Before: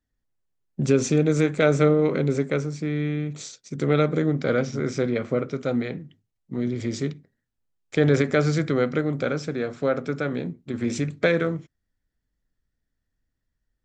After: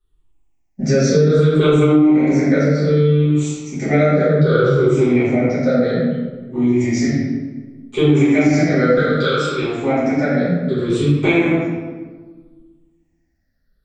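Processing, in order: moving spectral ripple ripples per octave 0.64, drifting -0.64 Hz, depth 17 dB; 8.97–9.62 tilt shelf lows -9 dB, about 1200 Hz; reverb RT60 1.4 s, pre-delay 5 ms, DRR -11.5 dB; compressor 6:1, threshold -3 dBFS, peak gain reduction 9 dB; gain -6.5 dB

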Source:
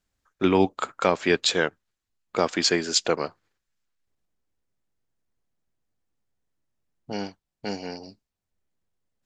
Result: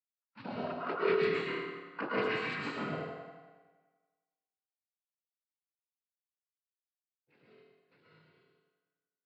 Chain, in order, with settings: Doppler pass-by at 2.57, 54 m/s, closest 12 m; tilt +3 dB/oct; compressor 8:1, threshold -36 dBFS, peak gain reduction 25 dB; mistuned SSB -260 Hz 350–3400 Hz; noise vocoder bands 8; low shelf 150 Hz -10 dB; dark delay 94 ms, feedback 71%, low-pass 1600 Hz, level -10 dB; reverb RT60 2.0 s, pre-delay 0.108 s, DRR -6 dB; spectral expander 1.5:1; gain +8 dB

